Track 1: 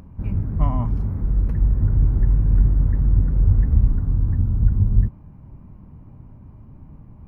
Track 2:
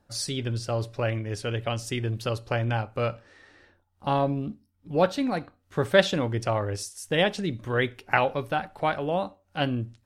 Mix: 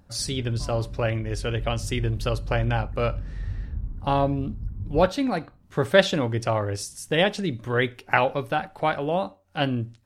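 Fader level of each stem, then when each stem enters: −15.5, +2.0 decibels; 0.00, 0.00 seconds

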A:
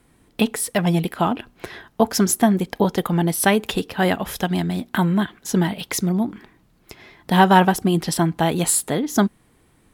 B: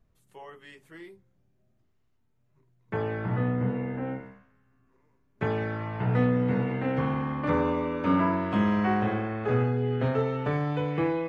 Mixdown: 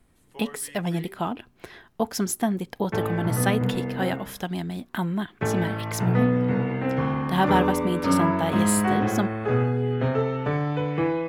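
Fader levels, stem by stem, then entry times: −8.0, +2.5 decibels; 0.00, 0.00 seconds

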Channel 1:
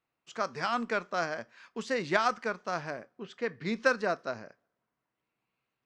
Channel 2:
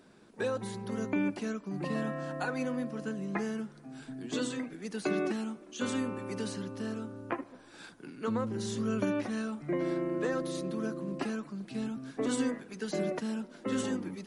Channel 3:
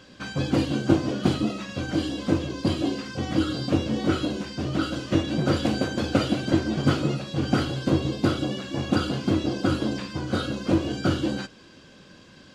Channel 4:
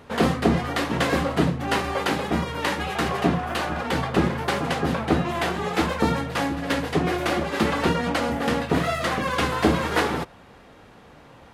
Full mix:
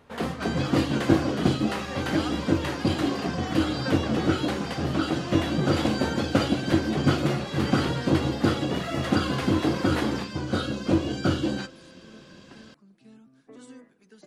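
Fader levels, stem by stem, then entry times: −9.5, −16.0, −0.5, −9.0 decibels; 0.00, 1.30, 0.20, 0.00 seconds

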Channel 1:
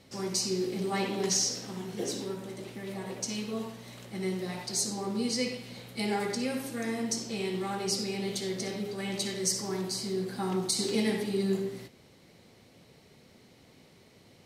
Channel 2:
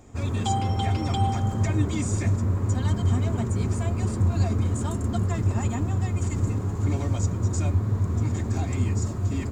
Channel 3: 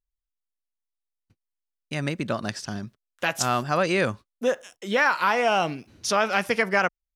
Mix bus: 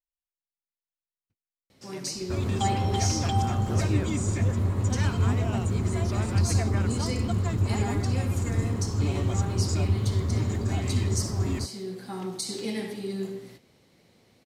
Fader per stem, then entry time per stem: −3.5, −1.5, −17.5 decibels; 1.70, 2.15, 0.00 seconds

